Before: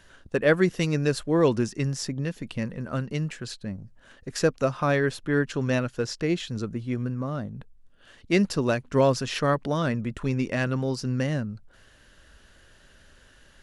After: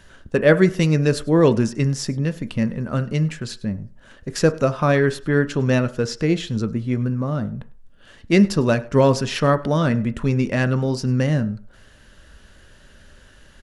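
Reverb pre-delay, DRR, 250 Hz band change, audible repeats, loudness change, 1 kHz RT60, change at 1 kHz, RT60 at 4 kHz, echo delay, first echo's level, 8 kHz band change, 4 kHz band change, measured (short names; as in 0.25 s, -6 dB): 3 ms, 11.5 dB, +7.0 dB, 1, +6.5 dB, 0.45 s, +5.0 dB, 0.45 s, 0.101 s, -24.5 dB, +4.0 dB, +4.0 dB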